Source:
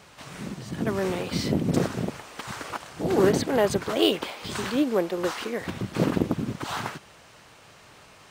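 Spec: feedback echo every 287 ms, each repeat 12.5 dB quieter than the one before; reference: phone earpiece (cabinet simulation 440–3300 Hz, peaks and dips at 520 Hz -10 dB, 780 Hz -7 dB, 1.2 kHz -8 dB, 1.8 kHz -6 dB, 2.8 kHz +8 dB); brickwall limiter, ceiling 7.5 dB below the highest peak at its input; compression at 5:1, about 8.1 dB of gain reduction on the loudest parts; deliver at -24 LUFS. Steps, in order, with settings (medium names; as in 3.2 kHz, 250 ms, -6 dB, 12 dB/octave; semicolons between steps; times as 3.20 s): compression 5:1, threshold -26 dBFS; peak limiter -22.5 dBFS; cabinet simulation 440–3300 Hz, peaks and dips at 520 Hz -10 dB, 780 Hz -7 dB, 1.2 kHz -8 dB, 1.8 kHz -6 dB, 2.8 kHz +8 dB; feedback delay 287 ms, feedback 24%, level -12.5 dB; trim +15 dB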